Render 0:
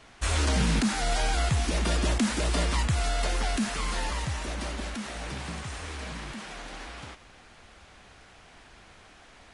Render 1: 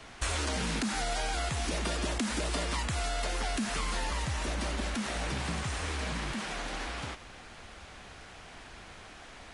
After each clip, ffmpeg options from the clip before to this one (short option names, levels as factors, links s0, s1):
-filter_complex "[0:a]acrossover=split=250|1100[s0][s1][s2];[s0]alimiter=level_in=1.58:limit=0.0631:level=0:latency=1,volume=0.631[s3];[s3][s1][s2]amix=inputs=3:normalize=0,acompressor=threshold=0.0224:ratio=6,volume=1.58"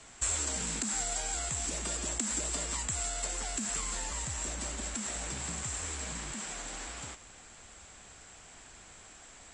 -af "lowpass=f=7600:t=q:w=16,volume=0.447"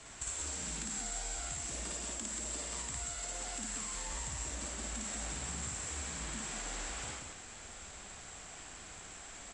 -filter_complex "[0:a]acompressor=threshold=0.00891:ratio=5,asplit=2[s0][s1];[s1]aecho=0:1:55.39|183.7:0.891|0.631[s2];[s0][s2]amix=inputs=2:normalize=0"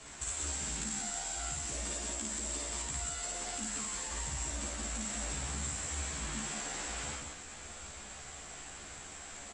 -filter_complex "[0:a]asplit=2[s0][s1];[s1]adelay=14,volume=0.794[s2];[s0][s2]amix=inputs=2:normalize=0"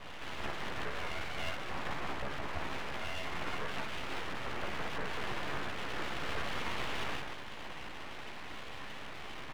-af "highpass=120,equalizer=f=160:t=q:w=4:g=-7,equalizer=f=400:t=q:w=4:g=10,equalizer=f=1400:t=q:w=4:g=6,lowpass=f=2200:w=0.5412,lowpass=f=2200:w=1.3066,aeval=exprs='abs(val(0))':c=same,volume=2.51"